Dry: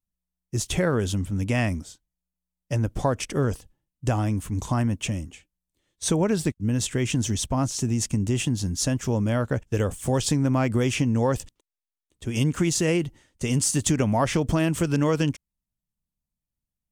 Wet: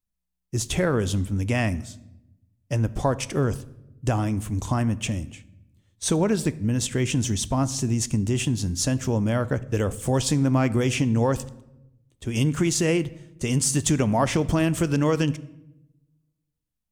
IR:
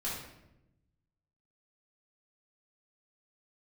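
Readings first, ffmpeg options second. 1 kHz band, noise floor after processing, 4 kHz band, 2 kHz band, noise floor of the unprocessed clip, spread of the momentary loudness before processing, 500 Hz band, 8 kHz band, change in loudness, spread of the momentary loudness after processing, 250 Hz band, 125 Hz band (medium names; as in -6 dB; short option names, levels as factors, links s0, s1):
+0.5 dB, -80 dBFS, +0.5 dB, +0.5 dB, under -85 dBFS, 8 LU, +0.5 dB, +0.5 dB, +0.5 dB, 9 LU, +1.0 dB, +0.5 dB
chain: -filter_complex "[0:a]asplit=2[s0][s1];[1:a]atrim=start_sample=2205[s2];[s1][s2]afir=irnorm=-1:irlink=0,volume=0.126[s3];[s0][s3]amix=inputs=2:normalize=0"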